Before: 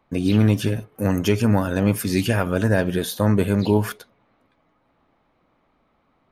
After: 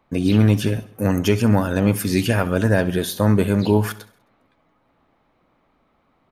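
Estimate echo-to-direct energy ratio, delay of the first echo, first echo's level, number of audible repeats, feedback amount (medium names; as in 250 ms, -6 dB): -17.5 dB, 66 ms, -19.0 dB, 3, 53%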